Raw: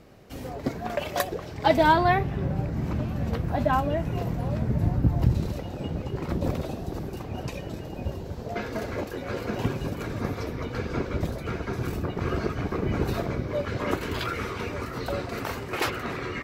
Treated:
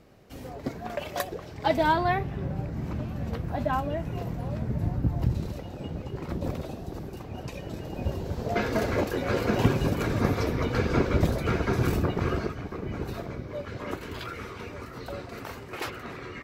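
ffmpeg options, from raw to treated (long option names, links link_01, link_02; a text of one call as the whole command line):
ffmpeg -i in.wav -af "volume=5dB,afade=type=in:start_time=7.48:duration=1.17:silence=0.354813,afade=type=out:start_time=11.93:duration=0.67:silence=0.251189" out.wav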